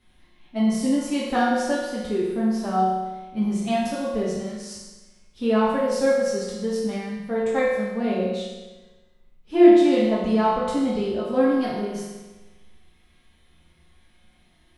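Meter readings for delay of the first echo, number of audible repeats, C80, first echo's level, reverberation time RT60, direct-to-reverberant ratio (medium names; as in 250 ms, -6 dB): no echo, no echo, 2.5 dB, no echo, 1.2 s, -8.0 dB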